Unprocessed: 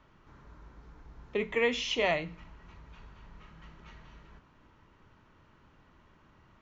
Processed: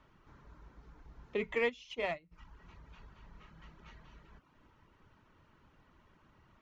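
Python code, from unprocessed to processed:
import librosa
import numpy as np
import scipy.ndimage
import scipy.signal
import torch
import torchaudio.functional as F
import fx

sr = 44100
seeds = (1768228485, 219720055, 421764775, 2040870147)

p1 = fx.dereverb_blind(x, sr, rt60_s=0.51)
p2 = 10.0 ** (-27.5 / 20.0) * np.tanh(p1 / 10.0 ** (-27.5 / 20.0))
p3 = p1 + (p2 * librosa.db_to_amplitude(-10.0))
p4 = fx.upward_expand(p3, sr, threshold_db=-39.0, expansion=2.5, at=(1.68, 2.31), fade=0.02)
y = p4 * librosa.db_to_amplitude(-5.0)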